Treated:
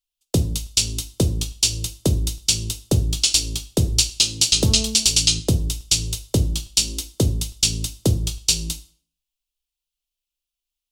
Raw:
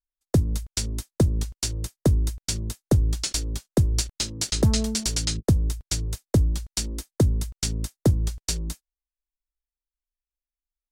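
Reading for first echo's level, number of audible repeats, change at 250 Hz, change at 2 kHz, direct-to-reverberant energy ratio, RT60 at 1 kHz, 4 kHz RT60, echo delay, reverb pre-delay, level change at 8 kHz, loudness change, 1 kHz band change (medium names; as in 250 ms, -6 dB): no echo, no echo, +0.5 dB, +7.5 dB, 9.0 dB, 0.45 s, 0.45 s, no echo, 5 ms, +10.0 dB, +5.5 dB, 0.0 dB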